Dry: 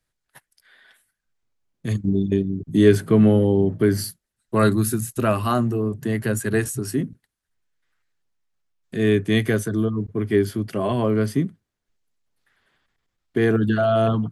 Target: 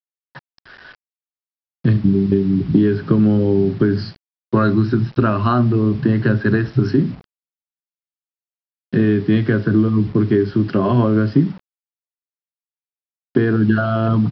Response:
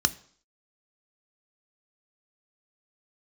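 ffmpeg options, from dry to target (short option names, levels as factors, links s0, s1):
-filter_complex "[0:a]acompressor=threshold=0.0562:ratio=10,equalizer=f=83:w=2.5:g=-3[s0];[1:a]atrim=start_sample=2205,atrim=end_sample=6174[s1];[s0][s1]afir=irnorm=-1:irlink=0,aresample=11025,acrusher=bits=6:mix=0:aa=0.000001,aresample=44100,highshelf=f=2400:g=-9,volume=1.33"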